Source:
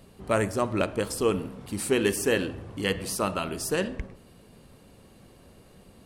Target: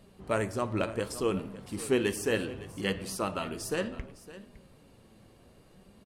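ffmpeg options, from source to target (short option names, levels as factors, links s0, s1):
-filter_complex "[0:a]asplit=2[s0][s1];[s1]aecho=0:1:560:0.15[s2];[s0][s2]amix=inputs=2:normalize=0,flanger=delay=4.9:depth=4.4:regen=72:speed=0.67:shape=sinusoidal,highshelf=f=9000:g=-5"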